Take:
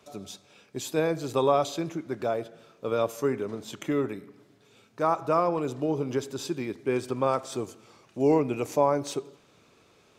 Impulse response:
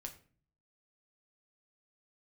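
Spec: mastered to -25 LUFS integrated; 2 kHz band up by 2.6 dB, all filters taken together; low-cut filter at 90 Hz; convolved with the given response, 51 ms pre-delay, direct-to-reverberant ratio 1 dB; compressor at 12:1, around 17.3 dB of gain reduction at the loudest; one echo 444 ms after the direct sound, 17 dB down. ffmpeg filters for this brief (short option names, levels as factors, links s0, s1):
-filter_complex "[0:a]highpass=90,equalizer=f=2000:t=o:g=3.5,acompressor=threshold=0.0178:ratio=12,aecho=1:1:444:0.141,asplit=2[s0][s1];[1:a]atrim=start_sample=2205,adelay=51[s2];[s1][s2]afir=irnorm=-1:irlink=0,volume=1.41[s3];[s0][s3]amix=inputs=2:normalize=0,volume=4.47"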